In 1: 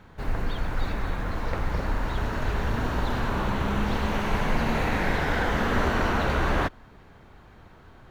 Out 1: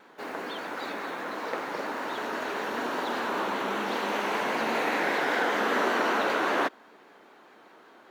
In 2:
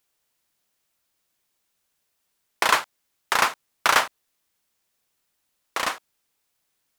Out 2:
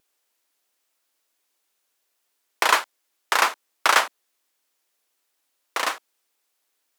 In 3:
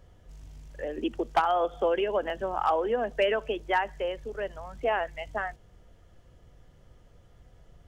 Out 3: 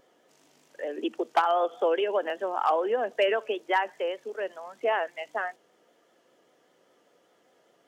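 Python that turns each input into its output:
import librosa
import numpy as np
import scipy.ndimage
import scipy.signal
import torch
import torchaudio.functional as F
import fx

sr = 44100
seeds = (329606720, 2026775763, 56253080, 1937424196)

y = scipy.signal.sosfilt(scipy.signal.butter(4, 280.0, 'highpass', fs=sr, output='sos'), x)
y = fx.vibrato(y, sr, rate_hz=5.1, depth_cents=53.0)
y = y * librosa.db_to_amplitude(1.0)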